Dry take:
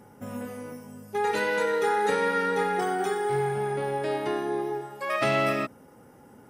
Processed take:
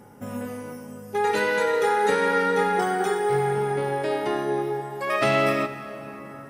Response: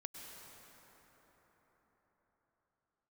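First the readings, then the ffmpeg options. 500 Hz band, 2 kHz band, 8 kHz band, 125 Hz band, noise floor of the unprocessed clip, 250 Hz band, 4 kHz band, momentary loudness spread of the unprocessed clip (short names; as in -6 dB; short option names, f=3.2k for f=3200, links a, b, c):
+3.5 dB, +3.5 dB, +3.0 dB, +3.5 dB, -53 dBFS, +3.5 dB, +3.5 dB, 13 LU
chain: -filter_complex "[0:a]asplit=2[a][b];[1:a]atrim=start_sample=2205[c];[b][c]afir=irnorm=-1:irlink=0,volume=-1.5dB[d];[a][d]amix=inputs=2:normalize=0"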